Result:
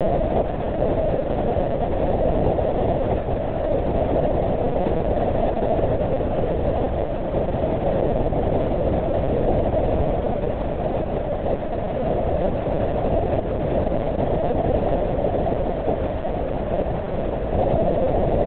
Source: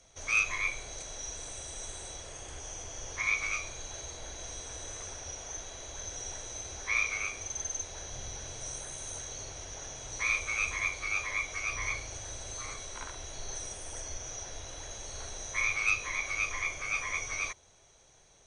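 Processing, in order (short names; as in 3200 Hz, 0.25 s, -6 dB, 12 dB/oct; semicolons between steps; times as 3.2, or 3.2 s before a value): delta modulation 32 kbps, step -29 dBFS; Chebyshev band-pass 130–740 Hz, order 5; notches 60/120/180 Hz; crossover distortion -60 dBFS; feedback echo 0.893 s, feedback 53%, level -22 dB; LPC vocoder at 8 kHz pitch kept; maximiser +35 dB; gain -8.5 dB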